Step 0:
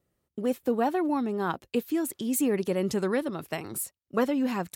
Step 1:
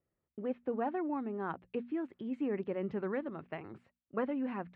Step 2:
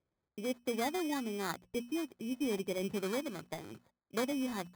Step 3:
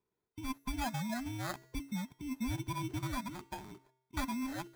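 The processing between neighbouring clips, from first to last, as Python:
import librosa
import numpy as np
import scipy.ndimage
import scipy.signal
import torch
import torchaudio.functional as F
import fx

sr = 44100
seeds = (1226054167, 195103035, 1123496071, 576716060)

y1 = scipy.signal.sosfilt(scipy.signal.butter(4, 2400.0, 'lowpass', fs=sr, output='sos'), x)
y1 = fx.hum_notches(y1, sr, base_hz=60, count=4)
y1 = y1 * 10.0 ** (-8.5 / 20.0)
y2 = fx.sample_hold(y1, sr, seeds[0], rate_hz=2800.0, jitter_pct=0)
y3 = fx.band_invert(y2, sr, width_hz=500)
y3 = fx.comb_fb(y3, sr, f0_hz=130.0, decay_s=0.86, harmonics='odd', damping=0.0, mix_pct=50)
y3 = y3 * 10.0 ** (4.0 / 20.0)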